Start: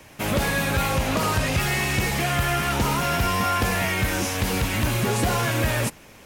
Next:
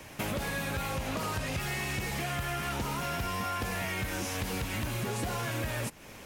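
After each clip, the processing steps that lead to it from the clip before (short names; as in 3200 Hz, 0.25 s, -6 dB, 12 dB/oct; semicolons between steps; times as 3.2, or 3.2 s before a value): compressor 5:1, threshold -32 dBFS, peak gain reduction 12.5 dB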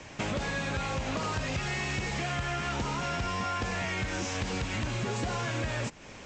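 steep low-pass 7800 Hz 96 dB/oct; gain +1.5 dB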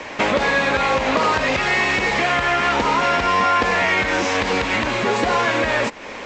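graphic EQ 125/250/500/1000/2000/4000 Hz -6/+7/+10/+10/+10/+7 dB; gain +3.5 dB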